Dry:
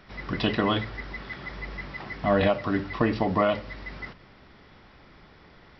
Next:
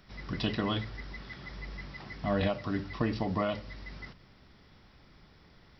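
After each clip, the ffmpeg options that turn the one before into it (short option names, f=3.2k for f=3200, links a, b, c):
-af "bass=f=250:g=6,treble=f=4k:g=11,volume=-9dB"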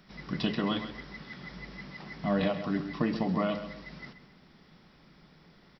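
-filter_complex "[0:a]lowshelf=f=130:t=q:w=3:g=-6.5,asplit=2[a][b];[b]adelay=132,lowpass=f=4.1k:p=1,volume=-10dB,asplit=2[c][d];[d]adelay=132,lowpass=f=4.1k:p=1,volume=0.35,asplit=2[e][f];[f]adelay=132,lowpass=f=4.1k:p=1,volume=0.35,asplit=2[g][h];[h]adelay=132,lowpass=f=4.1k:p=1,volume=0.35[i];[a][c][e][g][i]amix=inputs=5:normalize=0"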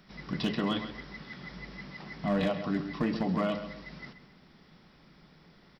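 -af "asoftclip=type=hard:threshold=-21.5dB"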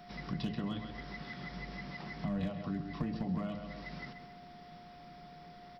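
-filter_complex "[0:a]acrossover=split=160[a][b];[b]acompressor=threshold=-45dB:ratio=4[c];[a][c]amix=inputs=2:normalize=0,aeval=exprs='val(0)+0.002*sin(2*PI*710*n/s)':c=same,volume=2dB"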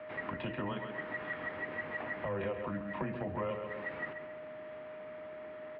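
-af "highpass=f=330:t=q:w=0.5412,highpass=f=330:t=q:w=1.307,lowpass=f=2.7k:t=q:w=0.5176,lowpass=f=2.7k:t=q:w=0.7071,lowpass=f=2.7k:t=q:w=1.932,afreqshift=-93,volume=8dB"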